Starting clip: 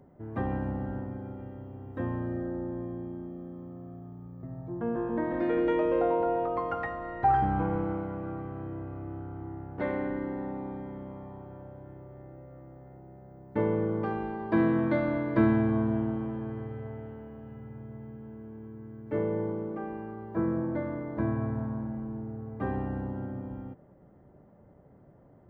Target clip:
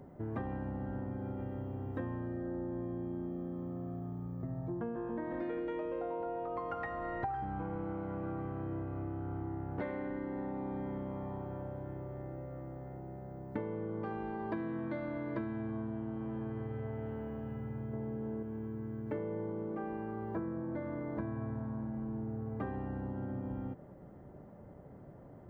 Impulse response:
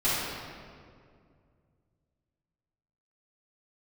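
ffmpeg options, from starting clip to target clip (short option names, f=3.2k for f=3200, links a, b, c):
-filter_complex "[0:a]asettb=1/sr,asplit=3[a][b][c];[a]atrim=end=17.934[d];[b]atrim=start=17.93:end=18.43,asetpts=PTS-STARTPTS,afade=t=in:d=0.004:c=qsin,afade=t=out:st=0.496:d=0.004:c=qsin,equalizer=f=480:t=o:w=2.4:g=7.5[e];[c]atrim=start=18.426[f];[d][e]acrossfade=d=0.004:c1=hsin:c2=qsin[g];[g][f]acrossfade=d=0.004:c1=qsin:c2=hsin,acompressor=threshold=-39dB:ratio=12,volume=4dB"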